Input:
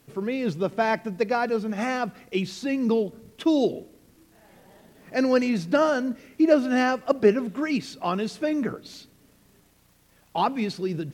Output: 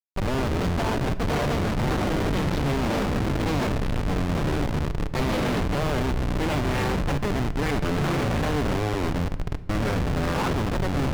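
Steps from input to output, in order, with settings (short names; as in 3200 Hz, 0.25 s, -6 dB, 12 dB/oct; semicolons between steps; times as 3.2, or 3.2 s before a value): cycle switcher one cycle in 2, muted; low-pass sweep 5100 Hz -> 1500 Hz, 4.71–8.67; echoes that change speed 0.108 s, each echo -7 st, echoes 3; de-hum 165.6 Hz, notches 14; Schmitt trigger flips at -29 dBFS; high shelf 6900 Hz -11.5 dB; shoebox room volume 640 m³, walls mixed, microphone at 0.35 m; gain +1.5 dB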